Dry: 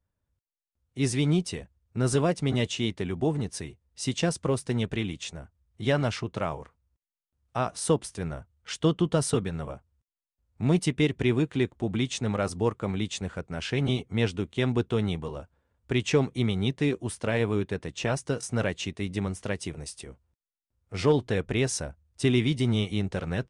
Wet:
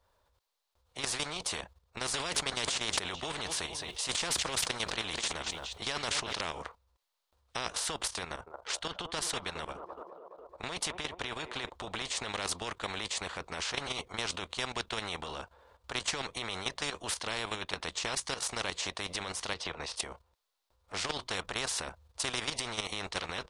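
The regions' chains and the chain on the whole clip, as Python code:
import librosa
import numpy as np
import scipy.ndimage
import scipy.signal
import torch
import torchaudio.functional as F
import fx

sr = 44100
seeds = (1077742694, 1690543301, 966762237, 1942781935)

y = fx.chain(x, sr, fx.peak_eq(hz=3400.0, db=7.0, octaves=0.51),
    fx.echo_feedback(ms=217, feedback_pct=37, wet_db=-23),
    fx.sustainer(db_per_s=43.0), at=(2.14, 6.41))
y = fx.chain(y, sr, fx.level_steps(step_db=9),
    fx.echo_wet_bandpass(ms=211, feedback_pct=58, hz=620.0, wet_db=-15), at=(8.25, 11.7))
y = fx.chain(y, sr, fx.lowpass(hz=3600.0, slope=12),
    fx.peak_eq(hz=480.0, db=7.5, octaves=0.21),
    fx.band_squash(depth_pct=70), at=(19.54, 19.96))
y = fx.graphic_eq(y, sr, hz=(125, 250, 500, 1000, 4000), db=(-11, -8, 8, 11, 10))
y = fx.level_steps(y, sr, step_db=12)
y = fx.spectral_comp(y, sr, ratio=4.0)
y = F.gain(torch.from_numpy(y), -6.0).numpy()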